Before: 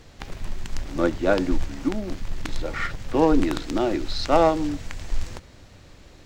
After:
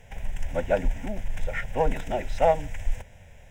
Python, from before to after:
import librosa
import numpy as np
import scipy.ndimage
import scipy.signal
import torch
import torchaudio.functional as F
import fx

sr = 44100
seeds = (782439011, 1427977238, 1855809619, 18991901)

p1 = np.clip(10.0 ** (23.5 / 20.0) * x, -1.0, 1.0) / 10.0 ** (23.5 / 20.0)
p2 = x + (p1 * 10.0 ** (-10.5 / 20.0))
p3 = fx.stretch_vocoder(p2, sr, factor=0.56)
y = fx.fixed_phaser(p3, sr, hz=1200.0, stages=6)